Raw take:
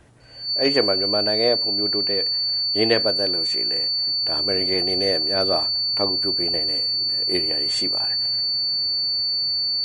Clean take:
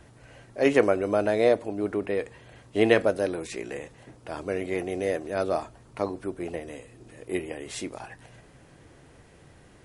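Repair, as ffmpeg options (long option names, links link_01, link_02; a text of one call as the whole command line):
ffmpeg -i in.wav -af "bandreject=frequency=4500:width=30,asetnsamples=nb_out_samples=441:pad=0,asendcmd='4.21 volume volume -3.5dB',volume=0dB" out.wav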